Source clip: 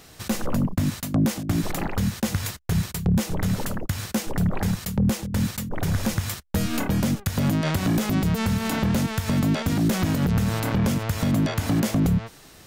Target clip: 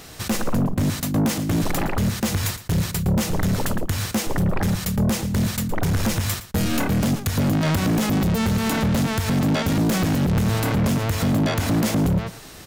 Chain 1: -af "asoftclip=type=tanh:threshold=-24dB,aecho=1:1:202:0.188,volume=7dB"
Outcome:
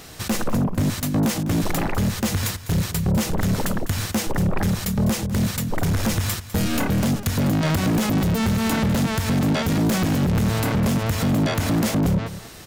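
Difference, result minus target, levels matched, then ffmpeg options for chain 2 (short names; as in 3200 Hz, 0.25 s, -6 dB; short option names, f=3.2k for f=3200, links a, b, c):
echo 88 ms late
-af "asoftclip=type=tanh:threshold=-24dB,aecho=1:1:114:0.188,volume=7dB"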